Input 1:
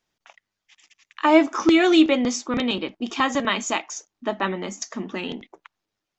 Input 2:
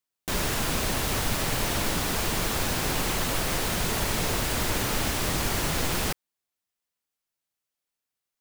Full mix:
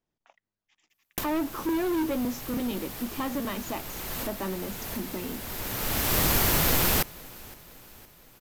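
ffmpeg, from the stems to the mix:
ffmpeg -i stem1.wav -i stem2.wav -filter_complex "[0:a]tiltshelf=frequency=970:gain=7,asoftclip=type=tanh:threshold=-15.5dB,volume=-9dB,asplit=2[link_01][link_02];[1:a]equalizer=frequency=13000:width_type=o:width=0.24:gain=13.5,adelay=900,volume=2.5dB,asplit=2[link_03][link_04];[link_04]volume=-23dB[link_05];[link_02]apad=whole_len=410264[link_06];[link_03][link_06]sidechaincompress=threshold=-56dB:ratio=3:attack=16:release=543[link_07];[link_05]aecho=0:1:513|1026|1539|2052|2565|3078|3591|4104:1|0.56|0.314|0.176|0.0983|0.0551|0.0308|0.0173[link_08];[link_01][link_07][link_08]amix=inputs=3:normalize=0" out.wav

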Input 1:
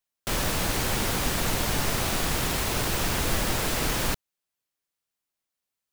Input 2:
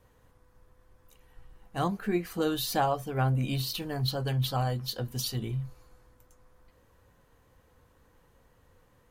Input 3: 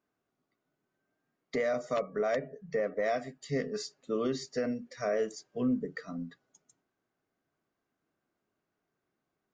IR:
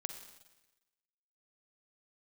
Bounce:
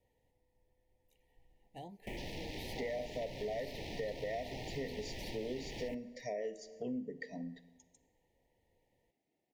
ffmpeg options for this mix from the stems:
-filter_complex "[0:a]afwtdn=0.02,acrossover=split=560|1800[link_01][link_02][link_03];[link_01]acompressor=threshold=-28dB:ratio=4[link_04];[link_02]acompressor=threshold=-46dB:ratio=4[link_05];[link_03]acompressor=threshold=-36dB:ratio=4[link_06];[link_04][link_05][link_06]amix=inputs=3:normalize=0,adelay=1800,volume=-8dB,asplit=2[link_07][link_08];[link_08]volume=-10dB[link_09];[1:a]acompressor=threshold=-31dB:ratio=6,volume=-11.5dB[link_10];[2:a]adelay=1250,volume=-3dB,asplit=2[link_11][link_12];[link_12]volume=-4dB[link_13];[3:a]atrim=start_sample=2205[link_14];[link_09][link_13]amix=inputs=2:normalize=0[link_15];[link_15][link_14]afir=irnorm=-1:irlink=0[link_16];[link_07][link_10][link_11][link_16]amix=inputs=4:normalize=0,asuperstop=centerf=1300:order=20:qfactor=1.6,bass=frequency=250:gain=-5,treble=frequency=4000:gain=-5,acompressor=threshold=-41dB:ratio=2.5"

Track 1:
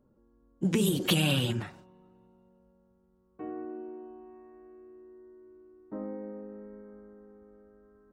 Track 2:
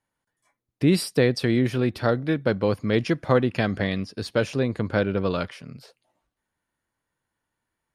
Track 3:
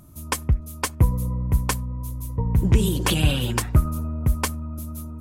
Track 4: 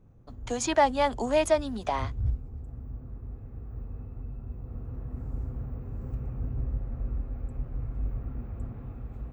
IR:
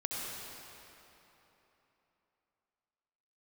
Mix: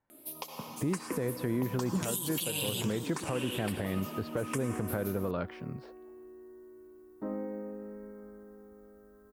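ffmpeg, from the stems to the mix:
-filter_complex "[0:a]adynamicequalizer=threshold=0.00447:dfrequency=2200:dqfactor=0.7:tfrequency=2200:tqfactor=0.7:attack=5:release=100:ratio=0.375:range=3:mode=boostabove:tftype=highshelf,adelay=1300,volume=2dB[link_01];[1:a]lowpass=1300,volume=1.5dB[link_02];[2:a]highpass=frequency=250:width=0.5412,highpass=frequency=250:width=1.3066,acompressor=threshold=-35dB:ratio=3,asplit=2[link_03][link_04];[link_04]afreqshift=0.86[link_05];[link_03][link_05]amix=inputs=2:normalize=1,adelay=100,volume=-0.5dB,asplit=2[link_06][link_07];[link_07]volume=-3dB[link_08];[link_01][link_02]amix=inputs=2:normalize=0,aemphasis=mode=production:type=75fm,acompressor=threshold=-23dB:ratio=6,volume=0dB[link_09];[4:a]atrim=start_sample=2205[link_10];[link_08][link_10]afir=irnorm=-1:irlink=0[link_11];[link_06][link_09][link_11]amix=inputs=3:normalize=0,alimiter=limit=-22dB:level=0:latency=1:release=187"

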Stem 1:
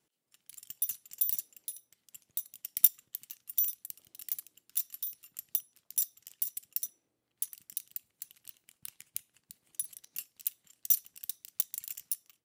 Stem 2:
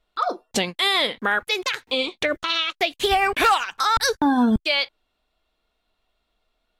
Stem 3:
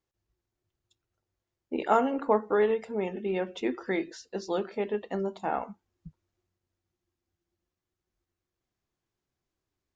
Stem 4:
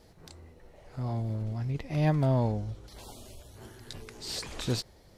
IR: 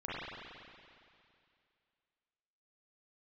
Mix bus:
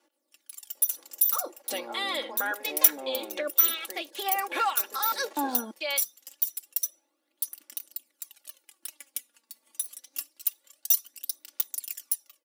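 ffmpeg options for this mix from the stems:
-filter_complex "[0:a]aecho=1:1:3.4:0.46,aphaser=in_gain=1:out_gain=1:delay=4.5:decay=0.56:speed=0.26:type=sinusoidal,volume=1dB[link_01];[1:a]adelay=1150,volume=-14dB[link_02];[2:a]acompressor=threshold=-26dB:ratio=6,volume=-16.5dB[link_03];[3:a]alimiter=limit=-24dB:level=0:latency=1:release=122,aeval=exprs='max(val(0),0)':channel_layout=same,adelay=750,volume=-4.5dB[link_04];[link_01][link_02][link_03][link_04]amix=inputs=4:normalize=0,highpass=frequency=330:width=0.5412,highpass=frequency=330:width=1.3066,equalizer=frequency=550:width=0.36:gain=3.5,aecho=1:1:3.6:0.66"

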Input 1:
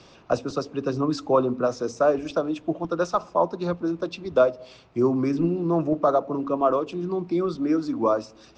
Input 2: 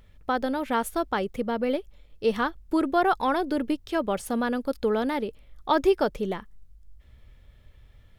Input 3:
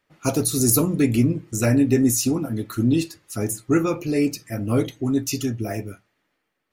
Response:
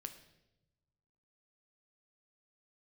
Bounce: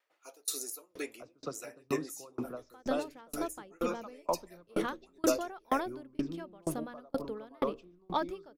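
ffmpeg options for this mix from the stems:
-filter_complex "[0:a]adelay=900,volume=-10dB,asplit=2[link_01][link_02];[link_02]volume=-6.5dB[link_03];[1:a]bandreject=frequency=78.92:width_type=h:width=4,bandreject=frequency=157.84:width_type=h:width=4,bandreject=frequency=236.76:width_type=h:width=4,bandreject=frequency=315.68:width_type=h:width=4,bandreject=frequency=394.6:width_type=h:width=4,bandreject=frequency=473.52:width_type=h:width=4,bandreject=frequency=552.44:width_type=h:width=4,acontrast=62,adelay=2450,volume=-8.5dB[link_04];[2:a]highpass=frequency=440:width=0.5412,highpass=frequency=440:width=1.3066,volume=-5.5dB,asplit=2[link_05][link_06];[link_06]volume=-14dB[link_07];[3:a]atrim=start_sample=2205[link_08];[link_03][link_07]amix=inputs=2:normalize=0[link_09];[link_09][link_08]afir=irnorm=-1:irlink=0[link_10];[link_01][link_04][link_05][link_10]amix=inputs=4:normalize=0,aeval=exprs='val(0)*pow(10,-35*if(lt(mod(2.1*n/s,1),2*abs(2.1)/1000),1-mod(2.1*n/s,1)/(2*abs(2.1)/1000),(mod(2.1*n/s,1)-2*abs(2.1)/1000)/(1-2*abs(2.1)/1000))/20)':channel_layout=same"

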